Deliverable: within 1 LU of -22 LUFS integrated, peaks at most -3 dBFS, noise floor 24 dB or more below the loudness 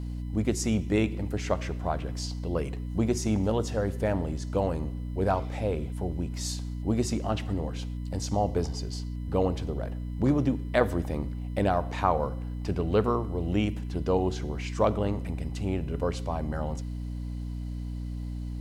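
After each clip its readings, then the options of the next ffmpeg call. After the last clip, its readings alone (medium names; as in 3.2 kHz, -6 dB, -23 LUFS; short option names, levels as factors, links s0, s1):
hum 60 Hz; highest harmonic 300 Hz; hum level -32 dBFS; loudness -30.0 LUFS; peak level -8.5 dBFS; loudness target -22.0 LUFS
-> -af "bandreject=f=60:t=h:w=4,bandreject=f=120:t=h:w=4,bandreject=f=180:t=h:w=4,bandreject=f=240:t=h:w=4,bandreject=f=300:t=h:w=4"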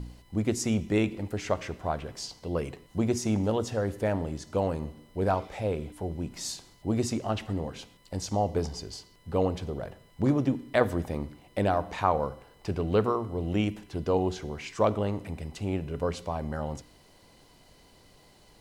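hum not found; loudness -30.5 LUFS; peak level -8.5 dBFS; loudness target -22.0 LUFS
-> -af "volume=2.66,alimiter=limit=0.708:level=0:latency=1"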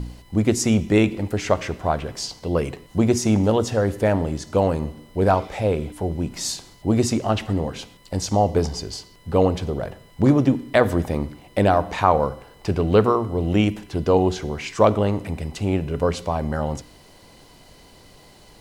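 loudness -22.0 LUFS; peak level -3.0 dBFS; noise floor -50 dBFS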